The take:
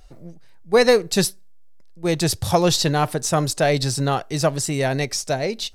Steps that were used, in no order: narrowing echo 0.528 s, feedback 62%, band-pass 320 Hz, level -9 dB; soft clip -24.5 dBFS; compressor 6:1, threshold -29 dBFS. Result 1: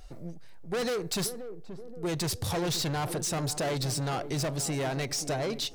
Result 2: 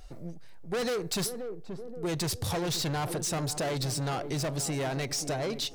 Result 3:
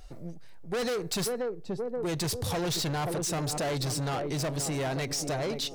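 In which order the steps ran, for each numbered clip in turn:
soft clip > compressor > narrowing echo; soft clip > narrowing echo > compressor; narrowing echo > soft clip > compressor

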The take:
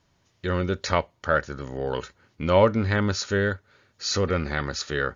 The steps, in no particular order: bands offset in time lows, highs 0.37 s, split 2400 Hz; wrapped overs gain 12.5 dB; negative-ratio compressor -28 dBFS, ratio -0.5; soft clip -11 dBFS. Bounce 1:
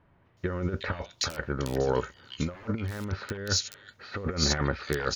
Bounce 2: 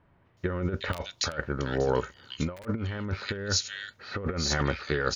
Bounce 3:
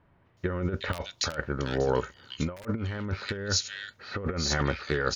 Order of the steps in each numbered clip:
wrapped overs > negative-ratio compressor > soft clip > bands offset in time; bands offset in time > soft clip > wrapped overs > negative-ratio compressor; soft clip > bands offset in time > wrapped overs > negative-ratio compressor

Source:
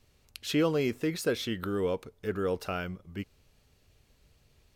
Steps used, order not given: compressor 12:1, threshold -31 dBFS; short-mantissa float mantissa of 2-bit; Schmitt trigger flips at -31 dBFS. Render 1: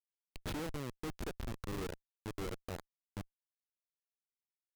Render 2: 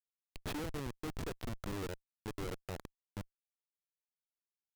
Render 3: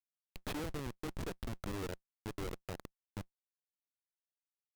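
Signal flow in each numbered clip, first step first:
short-mantissa float > compressor > Schmitt trigger; compressor > short-mantissa float > Schmitt trigger; compressor > Schmitt trigger > short-mantissa float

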